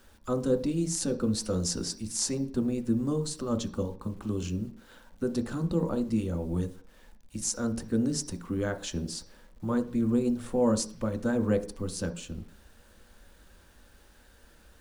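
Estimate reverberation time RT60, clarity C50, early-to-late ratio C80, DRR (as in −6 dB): 0.45 s, 14.0 dB, 19.0 dB, 6.0 dB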